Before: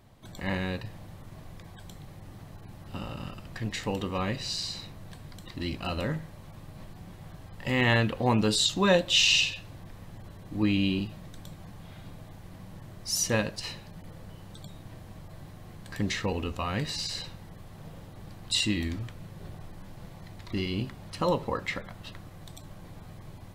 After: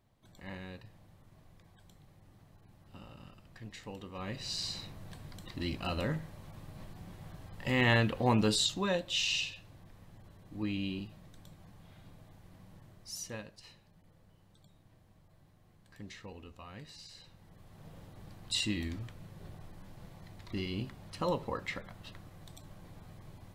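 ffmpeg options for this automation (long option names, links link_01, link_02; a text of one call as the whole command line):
ffmpeg -i in.wav -af "volume=9dB,afade=type=in:start_time=4.13:duration=0.54:silence=0.281838,afade=type=out:start_time=8.48:duration=0.41:silence=0.446684,afade=type=out:start_time=12.75:duration=0.69:silence=0.398107,afade=type=in:start_time=17.19:duration=0.84:silence=0.251189" out.wav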